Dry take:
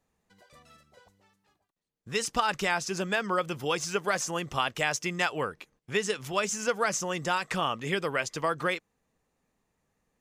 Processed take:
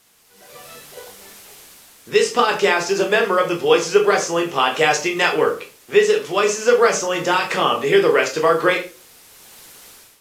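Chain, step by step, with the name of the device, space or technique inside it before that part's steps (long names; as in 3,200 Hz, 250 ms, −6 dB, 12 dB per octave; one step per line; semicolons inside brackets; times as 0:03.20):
filmed off a television (band-pass filter 270–7,000 Hz; parametric band 420 Hz +9 dB 0.52 octaves; convolution reverb RT60 0.35 s, pre-delay 11 ms, DRR 1.5 dB; white noise bed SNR 28 dB; automatic gain control gain up to 15 dB; level −1 dB; AAC 64 kbit/s 32,000 Hz)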